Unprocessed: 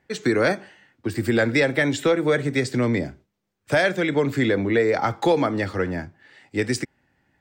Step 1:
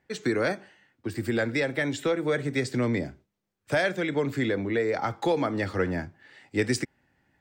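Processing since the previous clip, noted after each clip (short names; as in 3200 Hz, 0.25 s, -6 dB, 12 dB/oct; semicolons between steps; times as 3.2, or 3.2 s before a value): vocal rider 0.5 s; gain -5 dB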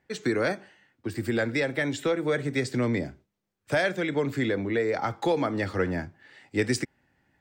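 nothing audible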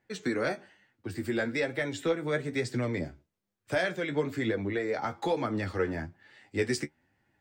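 flange 1.1 Hz, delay 8.2 ms, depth 6.2 ms, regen +31%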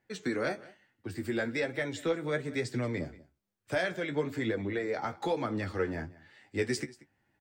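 echo 0.185 s -20.5 dB; gain -2 dB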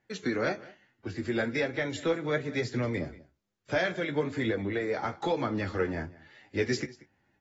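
gain +2 dB; AAC 24 kbps 32000 Hz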